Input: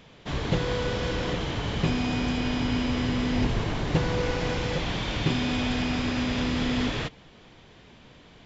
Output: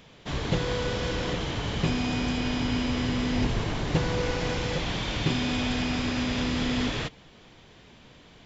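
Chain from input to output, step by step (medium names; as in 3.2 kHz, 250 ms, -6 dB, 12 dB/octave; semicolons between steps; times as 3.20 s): treble shelf 5.5 kHz +5.5 dB; trim -1 dB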